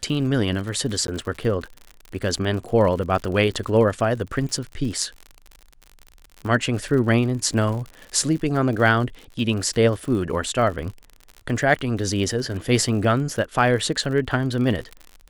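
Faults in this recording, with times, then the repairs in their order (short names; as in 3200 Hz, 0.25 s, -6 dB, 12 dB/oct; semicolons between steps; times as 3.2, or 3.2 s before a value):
crackle 59/s -30 dBFS
1.07–1.08 gap 12 ms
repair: de-click; interpolate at 1.07, 12 ms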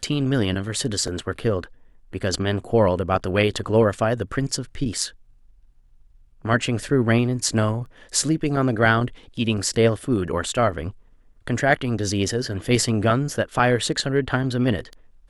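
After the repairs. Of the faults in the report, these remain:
none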